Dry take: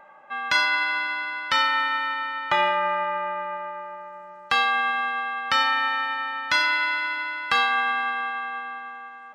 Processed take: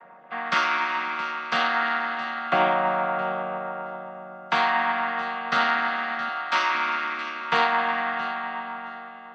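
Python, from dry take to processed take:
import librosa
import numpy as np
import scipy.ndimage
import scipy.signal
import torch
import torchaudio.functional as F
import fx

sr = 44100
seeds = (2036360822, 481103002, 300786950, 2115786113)

y = fx.chord_vocoder(x, sr, chord='minor triad', root=51)
y = fx.highpass(y, sr, hz=310.0, slope=12, at=(6.29, 6.75))
y = fx.echo_feedback(y, sr, ms=670, feedback_pct=18, wet_db=-14.5)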